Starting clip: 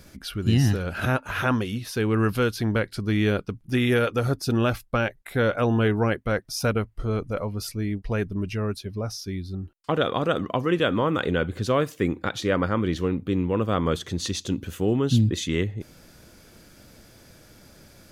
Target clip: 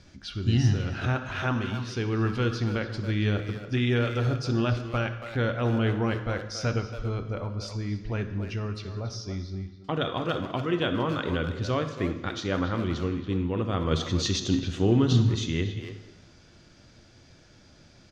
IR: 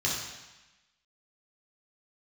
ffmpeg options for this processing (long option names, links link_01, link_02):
-filter_complex "[0:a]lowpass=frequency=6400:width=0.5412,lowpass=frequency=6400:width=1.3066,asettb=1/sr,asplit=3[link_01][link_02][link_03];[link_01]atrim=end=13.914[link_04];[link_02]atrim=start=13.91:end=15.13,asetpts=PTS-STARTPTS,afade=type=in:duration=0.004:curve=qsin,afade=type=out:start_time=1.216:duration=0.004:curve=qsin,acontrast=32[link_05];[link_03]atrim=start=15.126[link_06];[link_04][link_05]acrossfade=duration=0.004:curve1=hsin:curve2=qsin[link_07];[link_07][link_06]acrossfade=duration=0.004:curve1=qsin:curve2=hsin,asplit=2[link_08][link_09];[link_09]adelay=280,highpass=300,lowpass=3400,asoftclip=type=hard:threshold=-20dB,volume=-8dB[link_10];[link_08][link_10]amix=inputs=2:normalize=0,asplit=2[link_11][link_12];[1:a]atrim=start_sample=2205[link_13];[link_12][link_13]afir=irnorm=-1:irlink=0,volume=-15dB[link_14];[link_11][link_14]amix=inputs=2:normalize=0,volume=-5.5dB"